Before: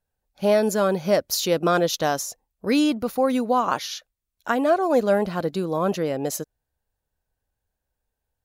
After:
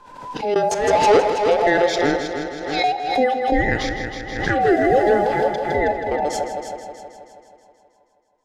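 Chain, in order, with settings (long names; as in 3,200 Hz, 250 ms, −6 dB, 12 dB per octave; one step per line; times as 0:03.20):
frequency inversion band by band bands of 1,000 Hz
in parallel at −2 dB: brickwall limiter −20 dBFS, peak gain reduction 11 dB
on the sum: gate pattern "xx.x.xx.xxxxxx" 81 BPM −24 dB
0:00.71–0:01.30: power curve on the samples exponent 0.5
0:02.16–0:02.84: pair of resonant band-passes 2,900 Hz, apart 0.89 octaves
0:04.61–0:05.46: background noise violet −38 dBFS
high-frequency loss of the air 110 metres
echo machine with several playback heads 160 ms, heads first and second, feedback 53%, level −10 dB
on a send at −12.5 dB: convolution reverb RT60 0.55 s, pre-delay 22 ms
on the sum: background raised ahead of every attack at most 57 dB per second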